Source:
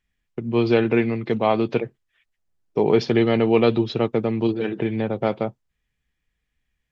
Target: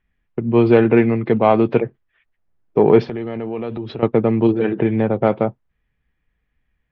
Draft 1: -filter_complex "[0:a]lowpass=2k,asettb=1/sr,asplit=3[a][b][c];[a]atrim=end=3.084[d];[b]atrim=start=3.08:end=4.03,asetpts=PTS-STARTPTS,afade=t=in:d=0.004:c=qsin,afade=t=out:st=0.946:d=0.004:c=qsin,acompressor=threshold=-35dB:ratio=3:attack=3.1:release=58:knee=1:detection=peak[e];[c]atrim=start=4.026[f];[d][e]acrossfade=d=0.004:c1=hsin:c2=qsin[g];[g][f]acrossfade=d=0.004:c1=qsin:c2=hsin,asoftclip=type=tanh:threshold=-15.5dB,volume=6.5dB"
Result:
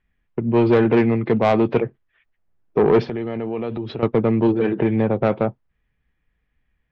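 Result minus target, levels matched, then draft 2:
soft clip: distortion +15 dB
-filter_complex "[0:a]lowpass=2k,asettb=1/sr,asplit=3[a][b][c];[a]atrim=end=3.084[d];[b]atrim=start=3.08:end=4.03,asetpts=PTS-STARTPTS,afade=t=in:d=0.004:c=qsin,afade=t=out:st=0.946:d=0.004:c=qsin,acompressor=threshold=-35dB:ratio=3:attack=3.1:release=58:knee=1:detection=peak[e];[c]atrim=start=4.026[f];[d][e]acrossfade=d=0.004:c1=hsin:c2=qsin[g];[g][f]acrossfade=d=0.004:c1=qsin:c2=hsin,asoftclip=type=tanh:threshold=-5dB,volume=6.5dB"

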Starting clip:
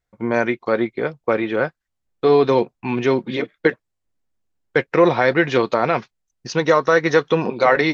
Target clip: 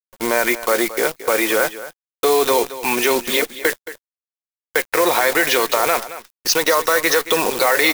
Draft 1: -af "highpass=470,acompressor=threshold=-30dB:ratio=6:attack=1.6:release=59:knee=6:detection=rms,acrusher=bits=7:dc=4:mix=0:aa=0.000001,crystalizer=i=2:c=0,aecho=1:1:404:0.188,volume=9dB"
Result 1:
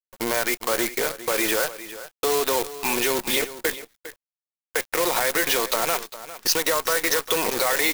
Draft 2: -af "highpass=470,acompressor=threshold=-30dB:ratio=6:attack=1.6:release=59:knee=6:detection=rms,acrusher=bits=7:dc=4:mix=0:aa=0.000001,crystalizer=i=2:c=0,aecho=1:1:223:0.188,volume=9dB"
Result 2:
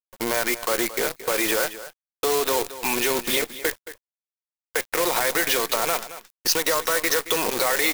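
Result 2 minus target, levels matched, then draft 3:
compressor: peak gain reduction +7.5 dB
-af "highpass=470,acompressor=threshold=-21dB:ratio=6:attack=1.6:release=59:knee=6:detection=rms,acrusher=bits=7:dc=4:mix=0:aa=0.000001,crystalizer=i=2:c=0,aecho=1:1:223:0.188,volume=9dB"

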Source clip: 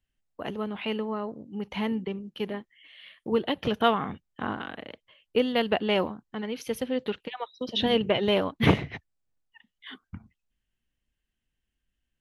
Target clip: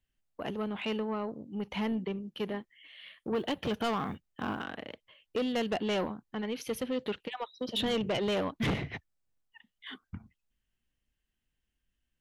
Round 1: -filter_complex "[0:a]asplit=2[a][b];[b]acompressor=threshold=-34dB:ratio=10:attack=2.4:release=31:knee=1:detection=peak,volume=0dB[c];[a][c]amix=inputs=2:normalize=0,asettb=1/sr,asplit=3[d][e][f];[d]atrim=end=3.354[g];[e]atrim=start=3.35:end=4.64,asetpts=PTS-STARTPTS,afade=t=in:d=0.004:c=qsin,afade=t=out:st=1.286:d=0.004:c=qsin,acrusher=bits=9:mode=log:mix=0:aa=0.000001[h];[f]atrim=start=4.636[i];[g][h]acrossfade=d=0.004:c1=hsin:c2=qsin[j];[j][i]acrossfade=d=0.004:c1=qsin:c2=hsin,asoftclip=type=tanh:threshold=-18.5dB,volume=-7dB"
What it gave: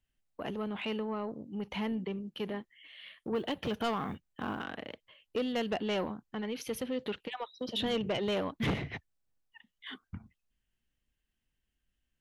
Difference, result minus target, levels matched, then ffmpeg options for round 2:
compressor: peak gain reduction +10.5 dB
-filter_complex "[0:a]asplit=2[a][b];[b]acompressor=threshold=-22.5dB:ratio=10:attack=2.4:release=31:knee=1:detection=peak,volume=0dB[c];[a][c]amix=inputs=2:normalize=0,asettb=1/sr,asplit=3[d][e][f];[d]atrim=end=3.354[g];[e]atrim=start=3.35:end=4.64,asetpts=PTS-STARTPTS,afade=t=in:d=0.004:c=qsin,afade=t=out:st=1.286:d=0.004:c=qsin,acrusher=bits=9:mode=log:mix=0:aa=0.000001[h];[f]atrim=start=4.636[i];[g][h]acrossfade=d=0.004:c1=hsin:c2=qsin[j];[j][i]acrossfade=d=0.004:c1=qsin:c2=hsin,asoftclip=type=tanh:threshold=-18.5dB,volume=-7dB"

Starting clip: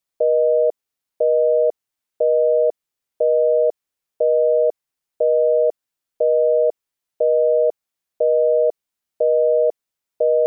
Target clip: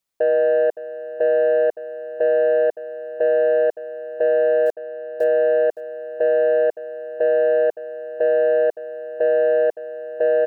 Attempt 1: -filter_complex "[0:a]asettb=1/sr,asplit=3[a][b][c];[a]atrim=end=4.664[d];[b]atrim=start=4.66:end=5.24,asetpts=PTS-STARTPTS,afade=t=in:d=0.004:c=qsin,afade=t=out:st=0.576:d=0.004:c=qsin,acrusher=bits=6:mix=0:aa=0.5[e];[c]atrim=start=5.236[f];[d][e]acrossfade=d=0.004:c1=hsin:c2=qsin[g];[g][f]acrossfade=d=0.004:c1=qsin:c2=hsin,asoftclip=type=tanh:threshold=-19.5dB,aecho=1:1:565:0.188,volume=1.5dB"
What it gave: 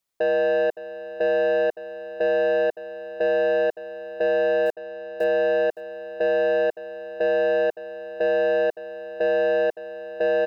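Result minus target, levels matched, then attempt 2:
soft clip: distortion +7 dB
-filter_complex "[0:a]asettb=1/sr,asplit=3[a][b][c];[a]atrim=end=4.664[d];[b]atrim=start=4.66:end=5.24,asetpts=PTS-STARTPTS,afade=t=in:d=0.004:c=qsin,afade=t=out:st=0.576:d=0.004:c=qsin,acrusher=bits=6:mix=0:aa=0.5[e];[c]atrim=start=5.236[f];[d][e]acrossfade=d=0.004:c1=hsin:c2=qsin[g];[g][f]acrossfade=d=0.004:c1=qsin:c2=hsin,asoftclip=type=tanh:threshold=-13dB,aecho=1:1:565:0.188,volume=1.5dB"

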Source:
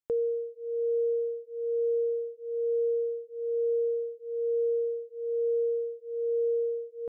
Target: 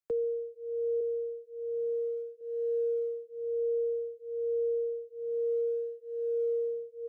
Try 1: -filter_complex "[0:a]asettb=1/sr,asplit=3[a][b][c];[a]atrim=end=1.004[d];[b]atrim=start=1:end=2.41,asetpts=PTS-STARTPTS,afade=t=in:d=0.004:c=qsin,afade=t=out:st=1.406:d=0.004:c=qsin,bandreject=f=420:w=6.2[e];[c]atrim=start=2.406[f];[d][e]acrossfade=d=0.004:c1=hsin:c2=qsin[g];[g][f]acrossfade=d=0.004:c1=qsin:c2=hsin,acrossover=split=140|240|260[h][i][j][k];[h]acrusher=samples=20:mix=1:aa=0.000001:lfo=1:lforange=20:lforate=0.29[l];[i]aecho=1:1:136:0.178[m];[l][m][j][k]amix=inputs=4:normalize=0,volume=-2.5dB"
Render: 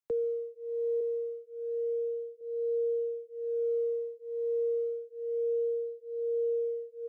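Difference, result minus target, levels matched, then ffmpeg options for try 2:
decimation with a swept rate: distortion -15 dB
-filter_complex "[0:a]asettb=1/sr,asplit=3[a][b][c];[a]atrim=end=1.004[d];[b]atrim=start=1:end=2.41,asetpts=PTS-STARTPTS,afade=t=in:d=0.004:c=qsin,afade=t=out:st=1.406:d=0.004:c=qsin,bandreject=f=420:w=6.2[e];[c]atrim=start=2.406[f];[d][e]acrossfade=d=0.004:c1=hsin:c2=qsin[g];[g][f]acrossfade=d=0.004:c1=qsin:c2=hsin,acrossover=split=140|240|260[h][i][j][k];[h]acrusher=samples=76:mix=1:aa=0.000001:lfo=1:lforange=76:lforate=0.29[l];[i]aecho=1:1:136:0.178[m];[l][m][j][k]amix=inputs=4:normalize=0,volume=-2.5dB"

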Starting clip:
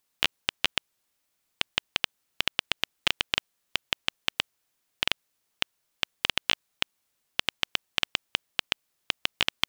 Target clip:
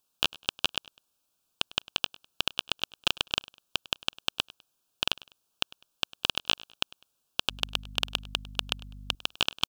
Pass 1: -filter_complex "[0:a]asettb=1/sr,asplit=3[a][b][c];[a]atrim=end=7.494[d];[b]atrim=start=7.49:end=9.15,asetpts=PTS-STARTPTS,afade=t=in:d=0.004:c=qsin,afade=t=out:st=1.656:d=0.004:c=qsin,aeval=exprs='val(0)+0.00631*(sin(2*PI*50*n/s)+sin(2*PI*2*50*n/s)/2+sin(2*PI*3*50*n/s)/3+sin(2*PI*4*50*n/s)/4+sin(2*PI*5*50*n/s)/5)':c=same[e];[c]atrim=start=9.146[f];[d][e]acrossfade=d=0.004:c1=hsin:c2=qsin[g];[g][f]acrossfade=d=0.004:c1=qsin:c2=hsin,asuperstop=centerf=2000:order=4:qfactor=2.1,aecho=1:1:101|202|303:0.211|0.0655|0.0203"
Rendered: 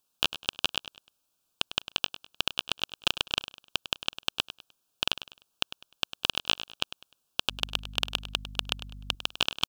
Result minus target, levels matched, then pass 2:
echo-to-direct +8 dB
-filter_complex "[0:a]asettb=1/sr,asplit=3[a][b][c];[a]atrim=end=7.494[d];[b]atrim=start=7.49:end=9.15,asetpts=PTS-STARTPTS,afade=t=in:d=0.004:c=qsin,afade=t=out:st=1.656:d=0.004:c=qsin,aeval=exprs='val(0)+0.00631*(sin(2*PI*50*n/s)+sin(2*PI*2*50*n/s)/2+sin(2*PI*3*50*n/s)/3+sin(2*PI*4*50*n/s)/4+sin(2*PI*5*50*n/s)/5)':c=same[e];[c]atrim=start=9.146[f];[d][e]acrossfade=d=0.004:c1=hsin:c2=qsin[g];[g][f]acrossfade=d=0.004:c1=qsin:c2=hsin,asuperstop=centerf=2000:order=4:qfactor=2.1,aecho=1:1:101|202:0.0841|0.0261"

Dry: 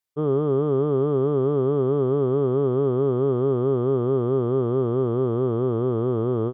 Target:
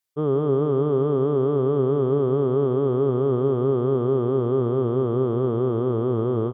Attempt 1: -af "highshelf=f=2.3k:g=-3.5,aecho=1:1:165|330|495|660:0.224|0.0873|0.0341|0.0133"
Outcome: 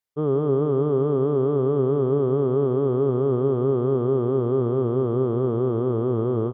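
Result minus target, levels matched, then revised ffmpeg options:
4000 Hz band -4.5 dB
-af "highshelf=f=2.3k:g=3.5,aecho=1:1:165|330|495|660:0.224|0.0873|0.0341|0.0133"

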